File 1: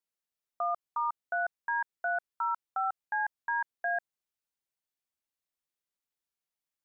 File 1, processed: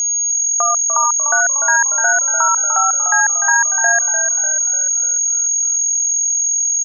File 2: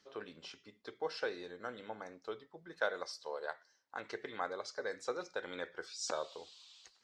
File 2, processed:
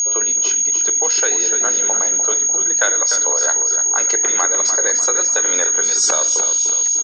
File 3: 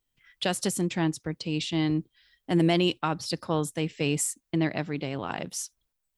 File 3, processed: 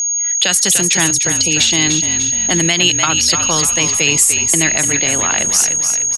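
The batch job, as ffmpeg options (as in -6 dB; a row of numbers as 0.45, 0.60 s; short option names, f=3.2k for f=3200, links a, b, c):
-filter_complex "[0:a]aeval=exprs='val(0)+0.0178*sin(2*PI*6600*n/s)':c=same,bass=f=250:g=-11,treble=f=4k:g=1,acrossover=split=180|1400|3100[a][b][c][d];[b]acompressor=threshold=-43dB:ratio=6[e];[a][e][c][d]amix=inputs=4:normalize=0,lowshelf=f=88:g=-10.5,asplit=7[f][g][h][i][j][k][l];[g]adelay=297,afreqshift=-43,volume=-8.5dB[m];[h]adelay=594,afreqshift=-86,volume=-14.3dB[n];[i]adelay=891,afreqshift=-129,volume=-20.2dB[o];[j]adelay=1188,afreqshift=-172,volume=-26dB[p];[k]adelay=1485,afreqshift=-215,volume=-31.9dB[q];[l]adelay=1782,afreqshift=-258,volume=-37.7dB[r];[f][m][n][o][p][q][r]amix=inputs=7:normalize=0,alimiter=level_in=20.5dB:limit=-1dB:release=50:level=0:latency=1,volume=-1dB"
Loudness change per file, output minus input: +20.5, +29.0, +17.0 LU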